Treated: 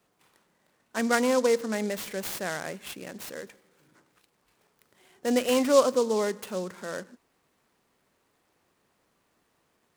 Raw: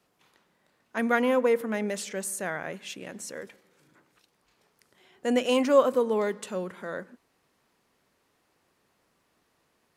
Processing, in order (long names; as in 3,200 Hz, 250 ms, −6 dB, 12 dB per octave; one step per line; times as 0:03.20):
short delay modulated by noise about 5,400 Hz, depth 0.041 ms